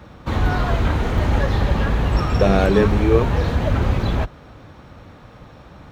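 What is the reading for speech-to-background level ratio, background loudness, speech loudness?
2.0 dB, −21.0 LKFS, −19.0 LKFS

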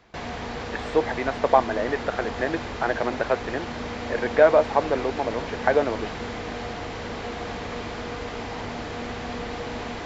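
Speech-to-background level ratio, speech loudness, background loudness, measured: 8.5 dB, −24.5 LKFS, −33.0 LKFS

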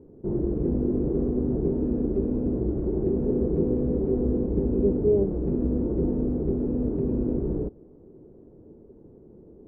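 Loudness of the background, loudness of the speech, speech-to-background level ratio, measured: −26.5 LKFS, −29.0 LKFS, −2.5 dB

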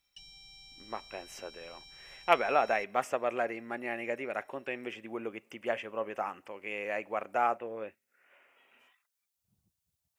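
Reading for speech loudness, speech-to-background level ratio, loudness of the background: −34.0 LKFS, 17.0 dB, −51.0 LKFS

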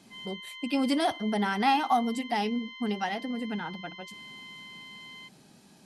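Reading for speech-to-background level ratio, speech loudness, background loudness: 14.0 dB, −29.0 LKFS, −43.0 LKFS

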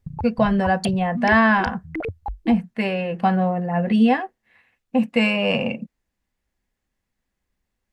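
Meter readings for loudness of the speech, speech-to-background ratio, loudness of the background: −20.5 LKFS, 12.0 dB, −32.5 LKFS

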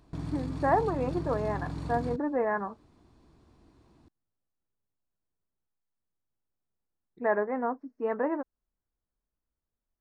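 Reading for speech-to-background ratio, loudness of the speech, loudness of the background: 6.5 dB, −31.0 LKFS, −37.5 LKFS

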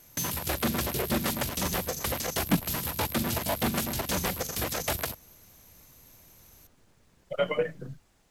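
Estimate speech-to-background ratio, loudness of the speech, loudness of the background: −2.5 dB, −32.0 LKFS, −29.5 LKFS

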